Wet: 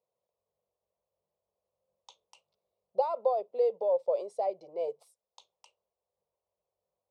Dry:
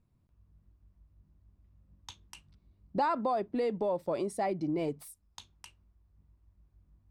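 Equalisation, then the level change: resonant high-pass 500 Hz, resonance Q 4.9; low-pass 6 kHz 12 dB/octave; static phaser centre 690 Hz, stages 4; -5.0 dB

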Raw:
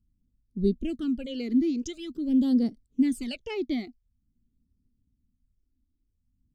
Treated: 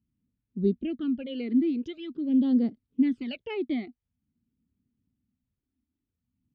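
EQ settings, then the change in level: high-pass 110 Hz 12 dB/octave; low-pass 3.3 kHz 24 dB/octave; 0.0 dB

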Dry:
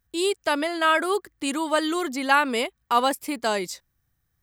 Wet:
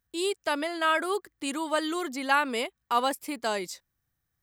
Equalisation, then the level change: bass shelf 120 Hz -6 dB; -4.5 dB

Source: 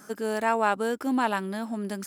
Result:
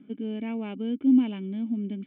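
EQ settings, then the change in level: cascade formant filter i; +8.5 dB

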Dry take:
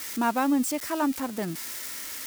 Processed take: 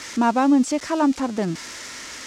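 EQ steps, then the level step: treble shelf 4.1 kHz -12 dB; dynamic bell 1.7 kHz, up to -4 dB, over -40 dBFS, Q 1.1; resonant low-pass 6.6 kHz, resonance Q 1.8; +7.5 dB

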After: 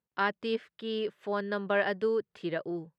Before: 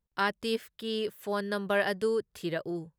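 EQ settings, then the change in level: band-pass 160–3100 Hz; 0.0 dB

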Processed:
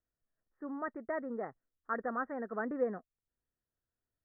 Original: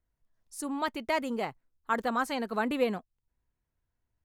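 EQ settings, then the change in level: rippled Chebyshev low-pass 1.9 kHz, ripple 3 dB; bass shelf 120 Hz -9 dB; peaking EQ 930 Hz -6.5 dB 0.41 oct; -3.5 dB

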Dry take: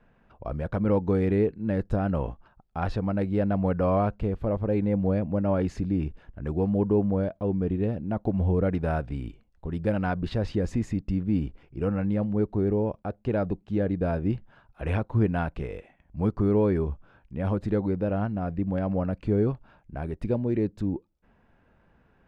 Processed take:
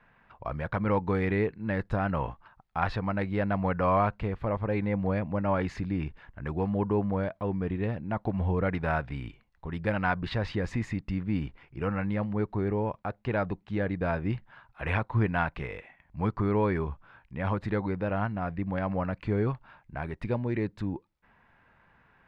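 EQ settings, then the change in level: graphic EQ 125/1000/2000/4000 Hz +5/+10/+12/+7 dB; -6.5 dB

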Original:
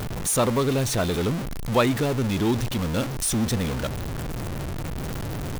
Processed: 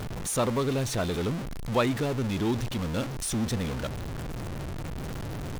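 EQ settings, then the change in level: treble shelf 11 kHz -7.5 dB; -4.5 dB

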